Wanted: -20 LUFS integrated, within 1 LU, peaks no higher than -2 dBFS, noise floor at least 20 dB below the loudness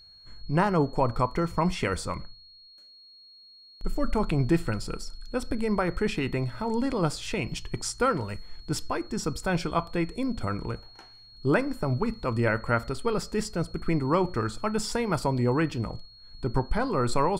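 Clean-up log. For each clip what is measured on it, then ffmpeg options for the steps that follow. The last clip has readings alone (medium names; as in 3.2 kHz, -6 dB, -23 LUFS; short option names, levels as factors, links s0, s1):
steady tone 4.3 kHz; tone level -50 dBFS; loudness -28.5 LUFS; peak level -9.0 dBFS; loudness target -20.0 LUFS
-> -af "bandreject=f=4300:w=30"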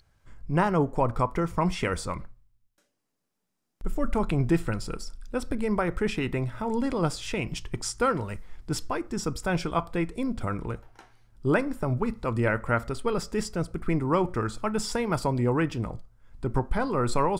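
steady tone not found; loudness -28.5 LUFS; peak level -9.0 dBFS; loudness target -20.0 LUFS
-> -af "volume=2.66,alimiter=limit=0.794:level=0:latency=1"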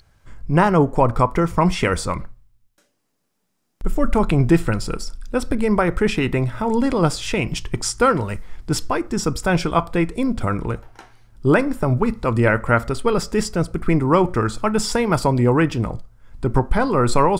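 loudness -20.0 LUFS; peak level -2.0 dBFS; noise floor -71 dBFS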